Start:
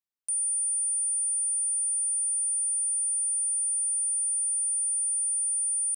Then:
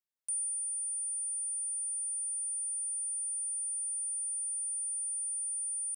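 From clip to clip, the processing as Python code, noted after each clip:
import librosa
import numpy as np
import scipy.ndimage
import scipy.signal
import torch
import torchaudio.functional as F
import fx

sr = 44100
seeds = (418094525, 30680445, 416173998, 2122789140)

y = fx.rider(x, sr, range_db=10, speed_s=0.5)
y = y * librosa.db_to_amplitude(-8.0)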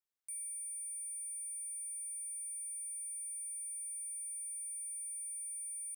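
y = 10.0 ** (-38.5 / 20.0) * np.tanh(x / 10.0 ** (-38.5 / 20.0))
y = y * librosa.db_to_amplitude(-2.5)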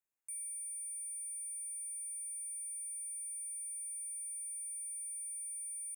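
y = fx.brickwall_bandstop(x, sr, low_hz=2900.0, high_hz=6200.0)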